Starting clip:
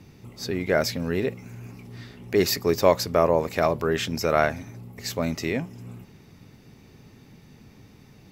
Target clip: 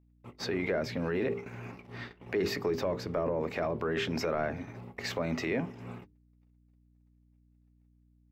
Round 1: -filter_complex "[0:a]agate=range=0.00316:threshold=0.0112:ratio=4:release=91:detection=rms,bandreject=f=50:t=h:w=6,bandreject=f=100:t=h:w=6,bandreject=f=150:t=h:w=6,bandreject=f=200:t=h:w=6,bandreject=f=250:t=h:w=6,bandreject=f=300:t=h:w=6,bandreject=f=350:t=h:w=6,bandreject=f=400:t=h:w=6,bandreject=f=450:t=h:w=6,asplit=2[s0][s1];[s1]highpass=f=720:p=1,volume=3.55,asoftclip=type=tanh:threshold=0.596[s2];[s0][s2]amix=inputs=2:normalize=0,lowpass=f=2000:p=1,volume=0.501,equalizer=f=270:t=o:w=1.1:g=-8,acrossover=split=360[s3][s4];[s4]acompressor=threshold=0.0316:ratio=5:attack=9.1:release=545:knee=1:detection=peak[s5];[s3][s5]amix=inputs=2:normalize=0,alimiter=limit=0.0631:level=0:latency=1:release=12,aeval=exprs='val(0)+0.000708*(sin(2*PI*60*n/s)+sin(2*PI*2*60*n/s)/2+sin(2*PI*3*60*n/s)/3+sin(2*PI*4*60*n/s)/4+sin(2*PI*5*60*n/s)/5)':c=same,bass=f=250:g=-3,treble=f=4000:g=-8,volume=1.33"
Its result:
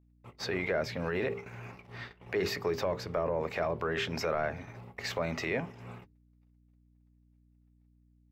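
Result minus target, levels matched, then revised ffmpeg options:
250 Hz band -4.0 dB
-filter_complex "[0:a]agate=range=0.00316:threshold=0.0112:ratio=4:release=91:detection=rms,bandreject=f=50:t=h:w=6,bandreject=f=100:t=h:w=6,bandreject=f=150:t=h:w=6,bandreject=f=200:t=h:w=6,bandreject=f=250:t=h:w=6,bandreject=f=300:t=h:w=6,bandreject=f=350:t=h:w=6,bandreject=f=400:t=h:w=6,bandreject=f=450:t=h:w=6,asplit=2[s0][s1];[s1]highpass=f=720:p=1,volume=3.55,asoftclip=type=tanh:threshold=0.596[s2];[s0][s2]amix=inputs=2:normalize=0,lowpass=f=2000:p=1,volume=0.501,acrossover=split=360[s3][s4];[s4]acompressor=threshold=0.0316:ratio=5:attack=9.1:release=545:knee=1:detection=peak[s5];[s3][s5]amix=inputs=2:normalize=0,alimiter=limit=0.0631:level=0:latency=1:release=12,aeval=exprs='val(0)+0.000708*(sin(2*PI*60*n/s)+sin(2*PI*2*60*n/s)/2+sin(2*PI*3*60*n/s)/3+sin(2*PI*4*60*n/s)/4+sin(2*PI*5*60*n/s)/5)':c=same,bass=f=250:g=-3,treble=f=4000:g=-8,volume=1.33"

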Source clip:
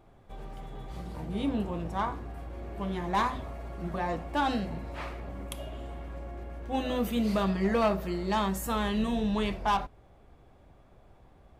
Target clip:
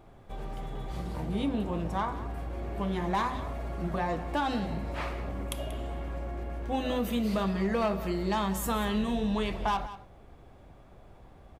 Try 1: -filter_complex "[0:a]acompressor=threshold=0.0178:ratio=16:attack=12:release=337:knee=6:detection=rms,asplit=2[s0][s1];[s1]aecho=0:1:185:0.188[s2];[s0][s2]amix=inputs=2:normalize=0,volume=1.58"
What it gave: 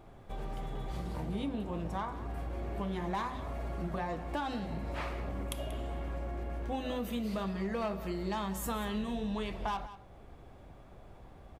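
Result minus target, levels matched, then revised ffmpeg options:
compression: peak gain reduction +6.5 dB
-filter_complex "[0:a]acompressor=threshold=0.0398:ratio=16:attack=12:release=337:knee=6:detection=rms,asplit=2[s0][s1];[s1]aecho=0:1:185:0.188[s2];[s0][s2]amix=inputs=2:normalize=0,volume=1.58"

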